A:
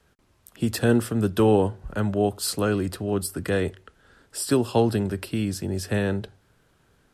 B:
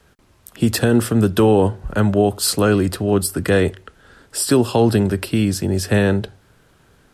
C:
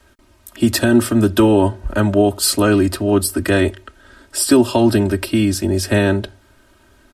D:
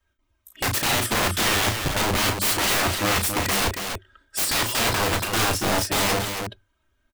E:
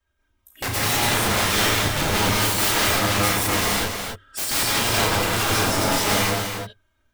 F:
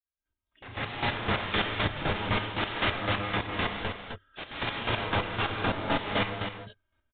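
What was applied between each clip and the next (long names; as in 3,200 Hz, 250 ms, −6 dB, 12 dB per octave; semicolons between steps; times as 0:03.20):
brickwall limiter −13.5 dBFS, peak gain reduction 6.5 dB; level +8.5 dB
comb filter 3.2 ms, depth 91%
spectral dynamics exaggerated over time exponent 1.5; wrap-around overflow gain 18 dB; loudspeakers that aren't time-aligned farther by 12 metres −6 dB, 96 metres −6 dB
reverb whose tail is shaped and stops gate 210 ms rising, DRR −4 dB; level −3.5 dB
fade in at the beginning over 1.22 s; square-wave tremolo 3.9 Hz, depth 60%, duty 30%; downsampling to 8,000 Hz; level −4 dB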